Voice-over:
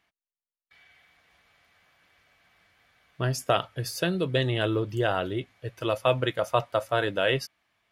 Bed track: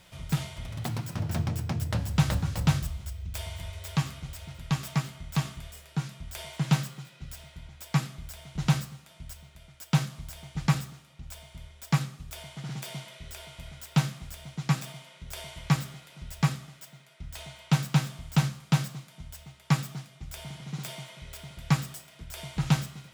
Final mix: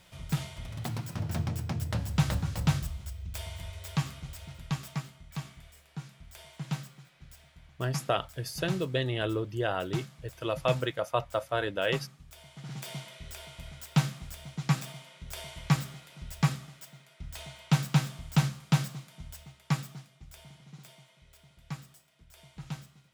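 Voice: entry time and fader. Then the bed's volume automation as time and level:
4.60 s, -4.5 dB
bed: 4.54 s -2.5 dB
5.23 s -10 dB
12.37 s -10 dB
12.90 s -1 dB
19.31 s -1 dB
20.97 s -15 dB

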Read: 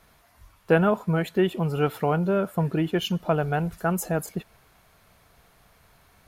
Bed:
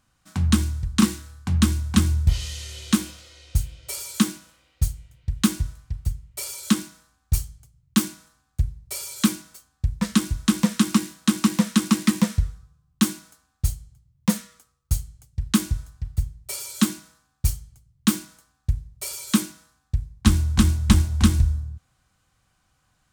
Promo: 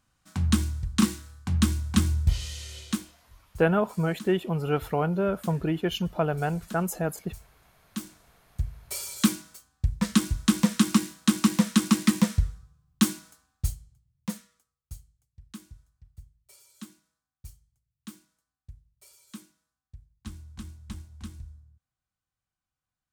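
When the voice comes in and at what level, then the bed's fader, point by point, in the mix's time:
2.90 s, -2.5 dB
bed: 2.79 s -4 dB
3.30 s -22 dB
7.47 s -22 dB
8.96 s -2 dB
13.39 s -2 dB
15.32 s -23.5 dB

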